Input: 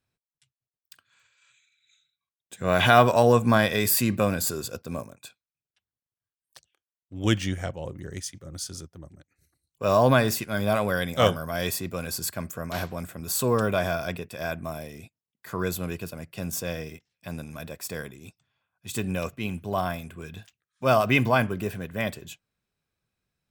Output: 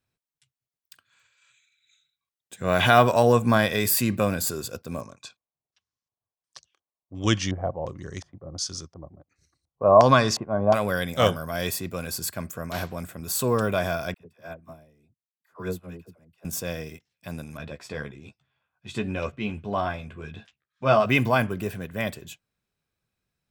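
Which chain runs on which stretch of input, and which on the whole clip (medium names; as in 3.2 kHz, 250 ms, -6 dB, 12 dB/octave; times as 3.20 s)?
5.01–10.74 s: peaking EQ 1.1 kHz +9.5 dB 0.24 oct + LFO low-pass square 1.4 Hz 750–5800 Hz
14.14–16.45 s: treble shelf 2.1 kHz -8.5 dB + phase dispersion lows, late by 69 ms, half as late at 550 Hz + upward expansion 2.5:1, over -39 dBFS
17.57–21.06 s: low-pass 4 kHz + doubling 14 ms -5.5 dB
whole clip: none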